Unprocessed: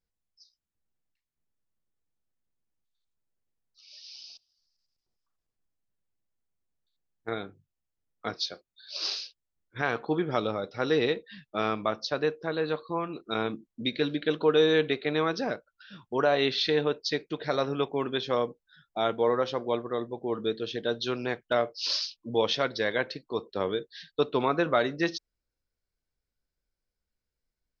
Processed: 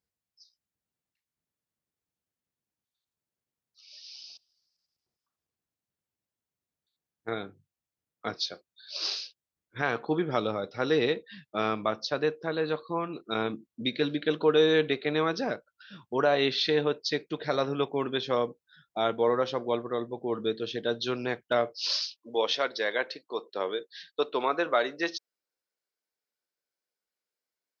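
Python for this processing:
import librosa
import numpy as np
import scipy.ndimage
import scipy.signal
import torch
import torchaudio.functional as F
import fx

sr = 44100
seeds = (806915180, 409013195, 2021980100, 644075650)

y = fx.highpass(x, sr, hz=fx.steps((0.0, 80.0), (21.85, 400.0)), slope=12)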